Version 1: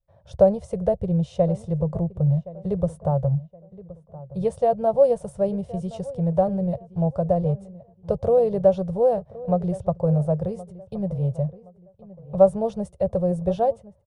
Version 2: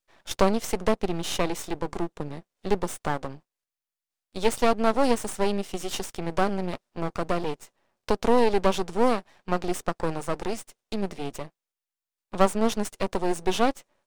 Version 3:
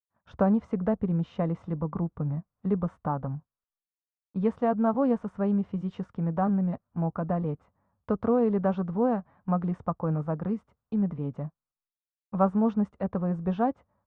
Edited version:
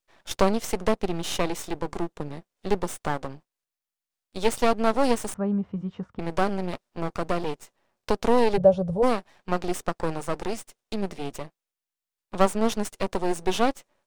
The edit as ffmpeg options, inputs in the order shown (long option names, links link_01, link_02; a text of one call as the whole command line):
ffmpeg -i take0.wav -i take1.wav -i take2.wav -filter_complex "[1:a]asplit=3[link_01][link_02][link_03];[link_01]atrim=end=5.342[link_04];[2:a]atrim=start=5.338:end=6.192[link_05];[link_02]atrim=start=6.188:end=8.58[link_06];[0:a]atrim=start=8.56:end=9.04[link_07];[link_03]atrim=start=9.02[link_08];[link_04][link_05]acrossfade=duration=0.004:curve1=hsin:curve2=hsin[link_09];[link_09][link_06]acrossfade=duration=0.004:curve1=hsin:curve2=hsin[link_10];[link_10][link_07]acrossfade=duration=0.02:curve1=tri:curve2=tri[link_11];[link_11][link_08]acrossfade=duration=0.02:curve1=tri:curve2=tri" out.wav